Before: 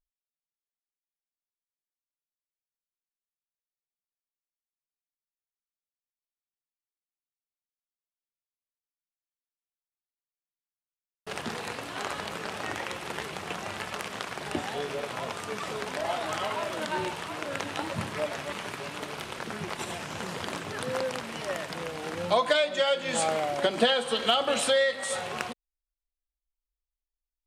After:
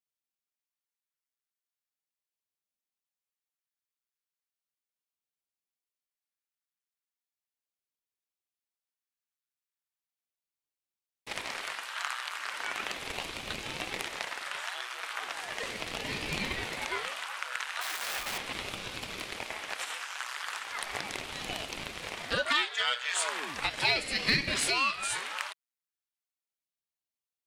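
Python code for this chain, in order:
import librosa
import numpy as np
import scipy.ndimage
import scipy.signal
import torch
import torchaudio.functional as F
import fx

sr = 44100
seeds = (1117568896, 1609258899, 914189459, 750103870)

p1 = fx.clip_1bit(x, sr, at=(17.81, 18.38))
p2 = fx.ladder_highpass(p1, sr, hz=980.0, resonance_pct=25)
p3 = np.clip(p2, -10.0 ** (-31.5 / 20.0), 10.0 ** (-31.5 / 20.0))
p4 = p2 + (p3 * librosa.db_to_amplitude(-10.5))
p5 = fx.ring_lfo(p4, sr, carrier_hz=600.0, swing_pct=90, hz=0.37)
y = p5 * librosa.db_to_amplitude(6.5)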